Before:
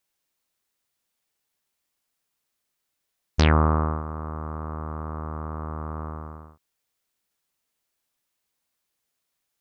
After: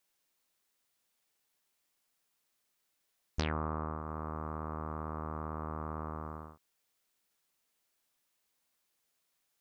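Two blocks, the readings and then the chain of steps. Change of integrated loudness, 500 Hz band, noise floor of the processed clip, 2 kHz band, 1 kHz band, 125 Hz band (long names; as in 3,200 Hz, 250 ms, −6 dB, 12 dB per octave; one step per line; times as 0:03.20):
−12.5 dB, −10.0 dB, −80 dBFS, −13.0 dB, −9.5 dB, −14.0 dB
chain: parametric band 61 Hz −5.5 dB 2.4 octaves
downward compressor 3 to 1, threshold −35 dBFS, peak gain reduction 14.5 dB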